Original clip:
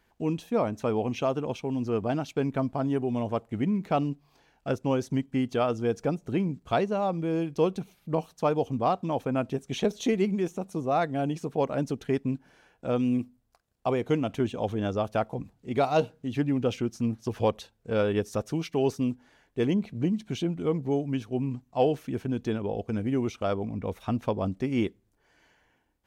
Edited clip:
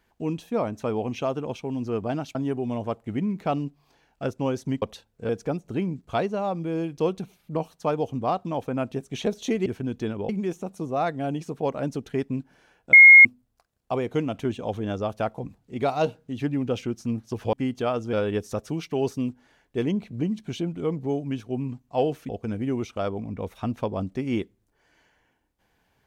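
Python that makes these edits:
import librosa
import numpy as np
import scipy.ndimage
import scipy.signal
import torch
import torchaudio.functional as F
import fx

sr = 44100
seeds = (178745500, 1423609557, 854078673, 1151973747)

y = fx.edit(x, sr, fx.cut(start_s=2.35, length_s=0.45),
    fx.swap(start_s=5.27, length_s=0.6, other_s=17.48, other_length_s=0.47),
    fx.bleep(start_s=12.88, length_s=0.32, hz=2150.0, db=-6.0),
    fx.move(start_s=22.11, length_s=0.63, to_s=10.24), tone=tone)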